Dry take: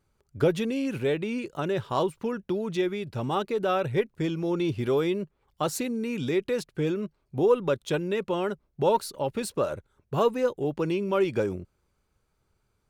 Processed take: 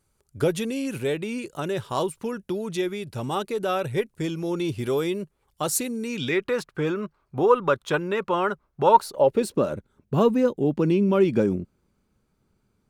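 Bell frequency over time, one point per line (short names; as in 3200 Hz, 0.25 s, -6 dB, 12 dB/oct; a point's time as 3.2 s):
bell +12 dB 1.3 oct
6.01 s 10000 Hz
6.42 s 1200 Hz
8.9 s 1200 Hz
9.63 s 220 Hz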